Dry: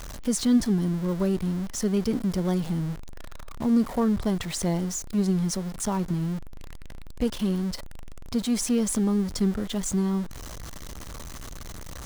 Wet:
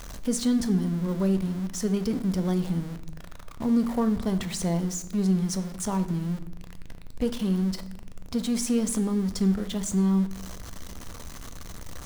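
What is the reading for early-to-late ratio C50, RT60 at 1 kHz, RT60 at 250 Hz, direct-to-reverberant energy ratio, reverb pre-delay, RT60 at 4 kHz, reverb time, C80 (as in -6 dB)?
14.0 dB, 0.70 s, 1.4 s, 9.5 dB, 4 ms, 0.65 s, 0.85 s, 16.5 dB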